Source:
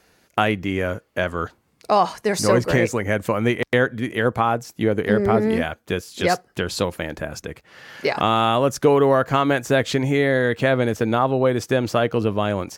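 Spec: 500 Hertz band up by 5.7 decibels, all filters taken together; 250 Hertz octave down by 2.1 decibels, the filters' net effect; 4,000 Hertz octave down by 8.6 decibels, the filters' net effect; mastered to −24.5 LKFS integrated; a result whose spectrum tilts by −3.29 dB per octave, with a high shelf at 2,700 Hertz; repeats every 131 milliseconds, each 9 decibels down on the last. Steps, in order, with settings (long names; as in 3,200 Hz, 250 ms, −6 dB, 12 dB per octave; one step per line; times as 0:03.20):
parametric band 250 Hz −5.5 dB
parametric band 500 Hz +8.5 dB
high-shelf EQ 2,700 Hz −8.5 dB
parametric band 4,000 Hz −4.5 dB
repeating echo 131 ms, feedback 35%, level −9 dB
level −7.5 dB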